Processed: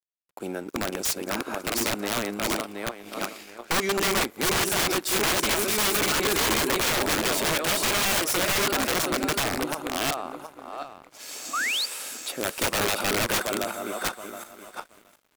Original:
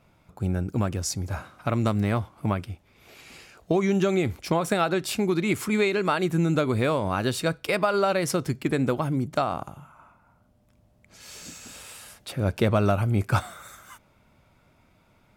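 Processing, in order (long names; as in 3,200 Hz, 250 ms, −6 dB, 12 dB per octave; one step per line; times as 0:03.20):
feedback delay that plays each chunk backwards 361 ms, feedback 47%, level −0.5 dB
high-pass filter 280 Hz 24 dB per octave
high-shelf EQ 9,600 Hz +7.5 dB
in parallel at −1 dB: downward compressor 20 to 1, threshold −35 dBFS, peak gain reduction 22 dB
on the sum: wrap-around overflow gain 18 dB
sound drawn into the spectrogram rise, 0:11.53–0:11.86, 1,100–4,900 Hz −26 dBFS
dead-zone distortion −47.5 dBFS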